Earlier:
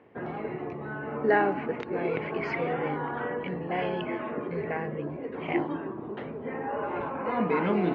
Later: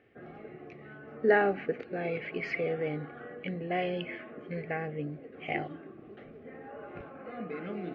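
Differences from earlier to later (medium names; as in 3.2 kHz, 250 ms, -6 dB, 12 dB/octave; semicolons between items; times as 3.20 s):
background -12.0 dB; master: add Butterworth band-stop 950 Hz, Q 3.2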